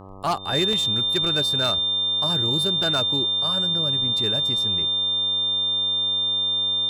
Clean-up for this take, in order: clip repair -15.5 dBFS; de-hum 96.4 Hz, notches 13; notch 3600 Hz, Q 30; interpolate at 0.73/2.83, 2.9 ms

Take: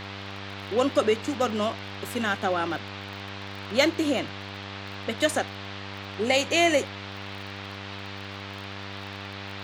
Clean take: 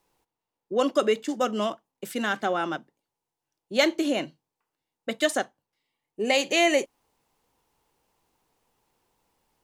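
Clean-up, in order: de-click; de-hum 98.7 Hz, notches 28; noise print and reduce 30 dB

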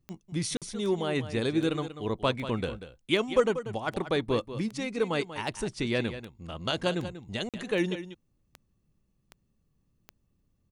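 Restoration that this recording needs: de-click; interpolate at 0.57/7.49, 47 ms; inverse comb 0.189 s -12 dB

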